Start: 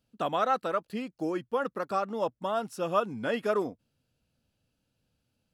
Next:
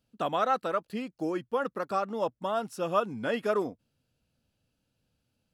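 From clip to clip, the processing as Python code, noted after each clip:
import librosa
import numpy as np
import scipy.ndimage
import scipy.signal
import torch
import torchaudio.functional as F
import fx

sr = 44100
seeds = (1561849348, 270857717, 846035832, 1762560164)

y = x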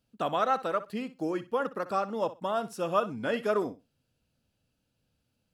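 y = fx.echo_feedback(x, sr, ms=62, feedback_pct=18, wet_db=-15.5)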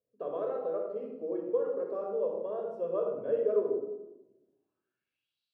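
y = fx.filter_sweep_bandpass(x, sr, from_hz=440.0, to_hz=3900.0, start_s=4.25, end_s=5.38, q=5.0)
y = fx.room_shoebox(y, sr, seeds[0], volume_m3=3600.0, walls='furnished', distance_m=5.5)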